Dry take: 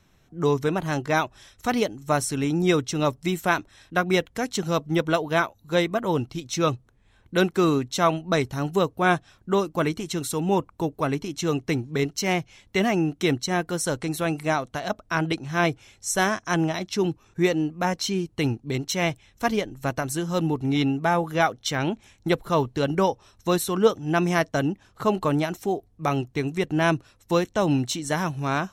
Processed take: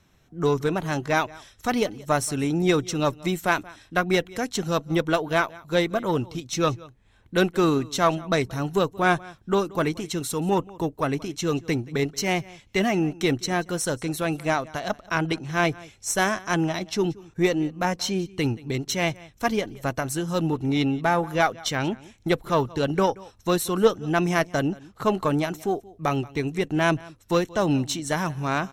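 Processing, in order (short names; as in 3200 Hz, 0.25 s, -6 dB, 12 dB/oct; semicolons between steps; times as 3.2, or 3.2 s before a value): echo 0.179 s -22 dB; added harmonics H 6 -27 dB, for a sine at -5.5 dBFS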